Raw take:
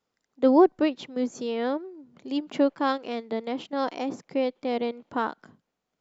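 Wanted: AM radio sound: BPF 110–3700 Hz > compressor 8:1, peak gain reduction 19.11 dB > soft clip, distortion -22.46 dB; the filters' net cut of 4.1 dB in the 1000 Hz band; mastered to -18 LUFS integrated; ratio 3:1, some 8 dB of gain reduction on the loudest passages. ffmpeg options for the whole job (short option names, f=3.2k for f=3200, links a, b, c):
-af "equalizer=f=1k:t=o:g=-5.5,acompressor=threshold=-24dB:ratio=3,highpass=110,lowpass=3.7k,acompressor=threshold=-41dB:ratio=8,asoftclip=threshold=-32.5dB,volume=29dB"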